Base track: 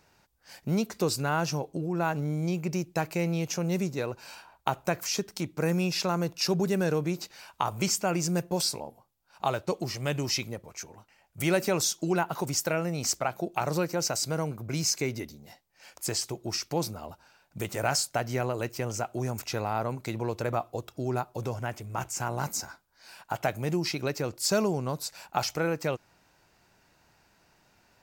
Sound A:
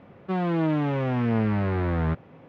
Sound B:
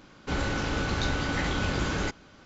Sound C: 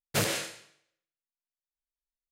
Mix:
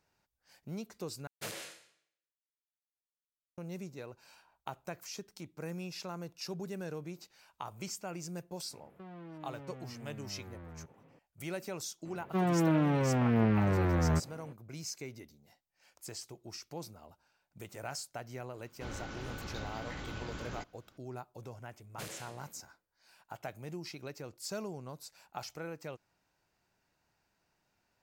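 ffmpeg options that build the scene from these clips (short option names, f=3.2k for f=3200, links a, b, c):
-filter_complex "[3:a]asplit=2[a][b];[1:a]asplit=2[c][d];[0:a]volume=-14dB[e];[a]lowshelf=f=220:g=-8.5[f];[c]acompressor=threshold=-33dB:ratio=6:attack=3.2:release=140:knee=1:detection=peak[g];[b]asplit=2[h][i];[i]adelay=264,lowpass=f=1.2k:p=1,volume=-11.5dB,asplit=2[j][k];[k]adelay=264,lowpass=f=1.2k:p=1,volume=0.18[l];[h][j][l]amix=inputs=3:normalize=0[m];[e]asplit=2[n][o];[n]atrim=end=1.274[p];[f]atrim=end=2.31,asetpts=PTS-STARTPTS,volume=-13dB[q];[o]atrim=start=3.576[r];[g]atrim=end=2.48,asetpts=PTS-STARTPTS,volume=-13dB,afade=t=in:d=0.004:c=hsin,afade=t=out:st=2.476:d=0.004:c=hsin,adelay=8710[s];[d]atrim=end=2.48,asetpts=PTS-STARTPTS,volume=-3.5dB,afade=t=in:d=0.004:c=hsin,afade=t=out:st=2.476:d=0.004:c=hsin,adelay=12050[t];[2:a]atrim=end=2.45,asetpts=PTS-STARTPTS,volume=-14.5dB,afade=t=in:d=0.004:c=hsin,afade=t=out:st=2.446:d=0.004:c=hsin,adelay=18530[u];[m]atrim=end=2.31,asetpts=PTS-STARTPTS,volume=-17dB,afade=t=in:d=0.004:c=hsin,afade=t=out:st=2.306:d=0.004:c=hsin,adelay=21840[v];[p][q]acrossfade=d=0.004:c1=hsin:c2=hsin[w];[w][r]acrossfade=d=0.004:c1=hsin:c2=hsin[x];[x][s][t][u][v]amix=inputs=5:normalize=0"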